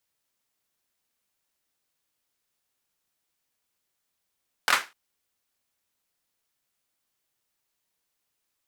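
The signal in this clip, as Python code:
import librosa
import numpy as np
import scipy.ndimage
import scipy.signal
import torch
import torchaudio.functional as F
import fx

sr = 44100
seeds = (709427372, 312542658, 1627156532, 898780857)

y = fx.drum_clap(sr, seeds[0], length_s=0.25, bursts=3, spacing_ms=23, hz=1500.0, decay_s=0.26)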